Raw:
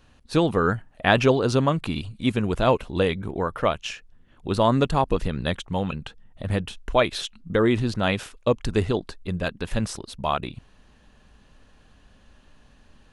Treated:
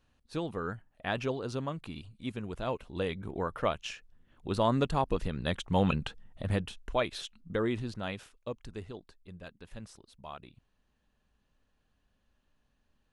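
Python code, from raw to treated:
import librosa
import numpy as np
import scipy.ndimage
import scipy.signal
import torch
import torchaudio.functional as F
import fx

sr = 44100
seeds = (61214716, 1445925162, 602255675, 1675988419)

y = fx.gain(x, sr, db=fx.line((2.69, -14.5), (3.38, -7.5), (5.42, -7.5), (5.89, 1.5), (6.99, -10.0), (7.56, -10.0), (8.85, -20.0)))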